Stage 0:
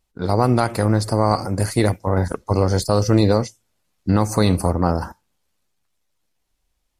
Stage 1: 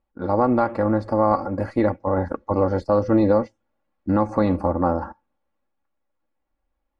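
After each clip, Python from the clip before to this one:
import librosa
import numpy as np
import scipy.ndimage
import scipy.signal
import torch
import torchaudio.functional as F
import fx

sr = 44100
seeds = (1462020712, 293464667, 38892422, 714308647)

y = scipy.signal.sosfilt(scipy.signal.butter(2, 1300.0, 'lowpass', fs=sr, output='sos'), x)
y = fx.low_shelf(y, sr, hz=210.0, db=-8.0)
y = y + 0.61 * np.pad(y, (int(3.6 * sr / 1000.0), 0))[:len(y)]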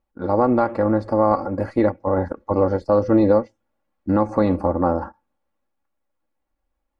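y = fx.dynamic_eq(x, sr, hz=420.0, q=1.3, threshold_db=-29.0, ratio=4.0, max_db=3)
y = fx.end_taper(y, sr, db_per_s=380.0)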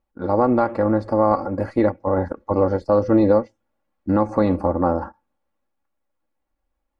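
y = x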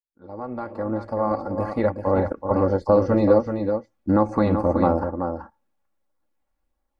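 y = fx.fade_in_head(x, sr, length_s=2.17)
y = fx.filter_lfo_notch(y, sr, shape='sine', hz=1.5, low_hz=300.0, high_hz=2800.0, q=2.7)
y = y + 10.0 ** (-7.0 / 20.0) * np.pad(y, (int(380 * sr / 1000.0), 0))[:len(y)]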